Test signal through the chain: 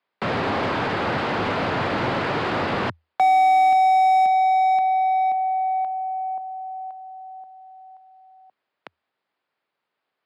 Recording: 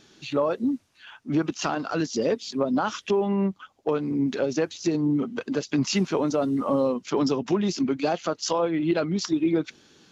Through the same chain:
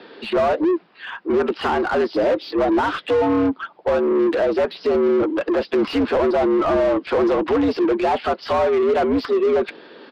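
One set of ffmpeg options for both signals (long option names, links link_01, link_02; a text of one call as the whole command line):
ffmpeg -i in.wav -filter_complex "[0:a]afreqshift=80,highpass=97,acrossover=split=2600[link_01][link_02];[link_02]asoftclip=type=tanh:threshold=-30.5dB[link_03];[link_01][link_03]amix=inputs=2:normalize=0,aemphasis=mode=reproduction:type=50fm,aresample=11025,asoftclip=type=hard:threshold=-20.5dB,aresample=44100,asplit=2[link_04][link_05];[link_05]highpass=frequency=720:poles=1,volume=20dB,asoftclip=type=tanh:threshold=-19dB[link_06];[link_04][link_06]amix=inputs=2:normalize=0,lowpass=frequency=1100:poles=1,volume=-6dB,volume=7dB" out.wav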